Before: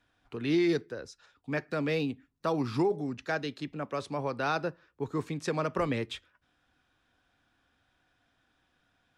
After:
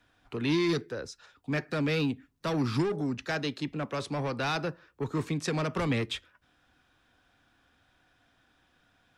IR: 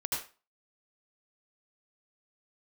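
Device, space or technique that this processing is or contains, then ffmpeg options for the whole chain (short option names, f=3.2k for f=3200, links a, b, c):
one-band saturation: -filter_complex "[0:a]acrossover=split=240|2100[a][b][c];[b]asoftclip=type=tanh:threshold=-35dB[d];[a][d][c]amix=inputs=3:normalize=0,volume=5dB"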